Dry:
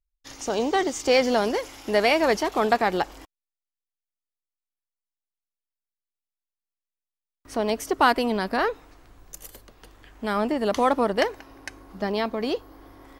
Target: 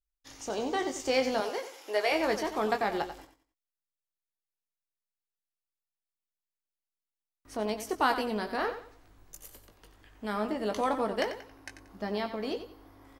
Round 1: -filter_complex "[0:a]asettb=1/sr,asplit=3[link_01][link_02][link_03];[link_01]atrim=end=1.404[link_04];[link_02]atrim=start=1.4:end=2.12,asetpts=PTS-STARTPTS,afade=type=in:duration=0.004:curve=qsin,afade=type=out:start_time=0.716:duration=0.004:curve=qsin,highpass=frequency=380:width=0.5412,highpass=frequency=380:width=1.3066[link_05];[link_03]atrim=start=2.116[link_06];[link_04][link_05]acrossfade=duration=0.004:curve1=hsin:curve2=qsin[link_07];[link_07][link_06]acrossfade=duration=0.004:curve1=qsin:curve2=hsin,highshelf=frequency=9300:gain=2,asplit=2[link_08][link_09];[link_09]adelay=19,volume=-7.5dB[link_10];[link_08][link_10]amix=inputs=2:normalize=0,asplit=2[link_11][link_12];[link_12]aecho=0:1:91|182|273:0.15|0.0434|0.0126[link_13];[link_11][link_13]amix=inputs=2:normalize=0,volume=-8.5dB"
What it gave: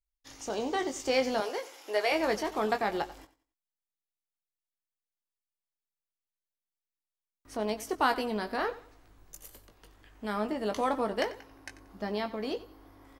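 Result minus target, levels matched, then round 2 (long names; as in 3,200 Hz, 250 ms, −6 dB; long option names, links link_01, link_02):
echo-to-direct −6 dB
-filter_complex "[0:a]asettb=1/sr,asplit=3[link_01][link_02][link_03];[link_01]atrim=end=1.404[link_04];[link_02]atrim=start=1.4:end=2.12,asetpts=PTS-STARTPTS,afade=type=in:duration=0.004:curve=qsin,afade=type=out:start_time=0.716:duration=0.004:curve=qsin,highpass=frequency=380:width=0.5412,highpass=frequency=380:width=1.3066[link_05];[link_03]atrim=start=2.116[link_06];[link_04][link_05]acrossfade=duration=0.004:curve1=hsin:curve2=qsin[link_07];[link_07][link_06]acrossfade=duration=0.004:curve1=qsin:curve2=hsin,highshelf=frequency=9300:gain=2,asplit=2[link_08][link_09];[link_09]adelay=19,volume=-7.5dB[link_10];[link_08][link_10]amix=inputs=2:normalize=0,asplit=2[link_11][link_12];[link_12]aecho=0:1:91|182|273:0.299|0.0866|0.0251[link_13];[link_11][link_13]amix=inputs=2:normalize=0,volume=-8.5dB"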